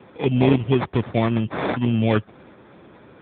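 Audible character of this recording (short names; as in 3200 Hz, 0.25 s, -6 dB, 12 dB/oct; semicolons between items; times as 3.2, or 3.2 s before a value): aliases and images of a low sample rate 2900 Hz, jitter 0%; AMR-NB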